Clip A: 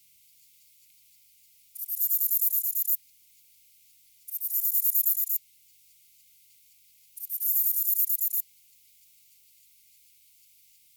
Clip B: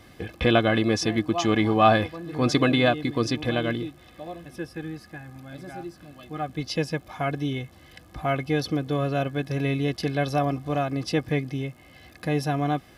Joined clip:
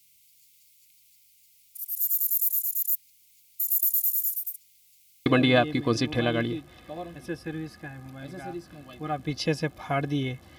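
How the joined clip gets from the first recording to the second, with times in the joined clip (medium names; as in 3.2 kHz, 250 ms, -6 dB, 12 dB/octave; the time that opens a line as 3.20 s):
clip A
3.58–5.26 s: reverse
5.26 s: go over to clip B from 2.56 s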